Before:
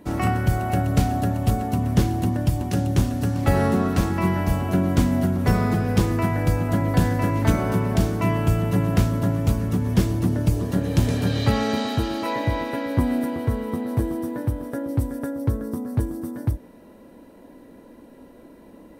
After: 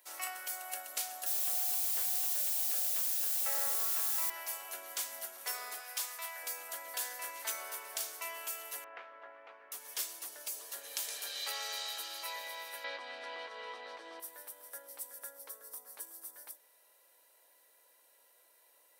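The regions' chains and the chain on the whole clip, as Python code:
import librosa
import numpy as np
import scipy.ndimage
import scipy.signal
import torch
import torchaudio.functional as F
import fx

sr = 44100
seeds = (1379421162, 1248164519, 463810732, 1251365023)

y = fx.chain(x, sr, fx.lowpass(hz=2000.0, slope=12),
    fx.quant_dither(seeds[0], bits=6, dither='triangular'), at=(1.26, 4.3))
y = fx.chain(y, sr, fx.highpass(hz=570.0, slope=24),
    fx.clip_hard(threshold_db=-23.0), at=(5.8, 6.43))
y = fx.chain(y, sr, fx.lowpass(hz=2100.0, slope=24),
    fx.low_shelf(hz=150.0, db=-8.5), at=(8.84, 9.72))
y = fx.chain(y, sr, fx.lowpass(hz=4400.0, slope=24),
    fx.env_flatten(amount_pct=70), at=(12.84, 14.2))
y = scipy.signal.sosfilt(scipy.signal.butter(4, 480.0, 'highpass', fs=sr, output='sos'), y)
y = np.diff(y, prepend=0.0)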